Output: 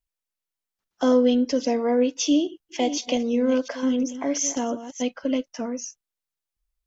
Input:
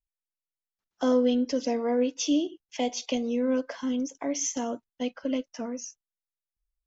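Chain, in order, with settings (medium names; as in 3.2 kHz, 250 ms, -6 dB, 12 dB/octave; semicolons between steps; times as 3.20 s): 2.28–5.02 s: chunks repeated in reverse 351 ms, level -11.5 dB; trim +4.5 dB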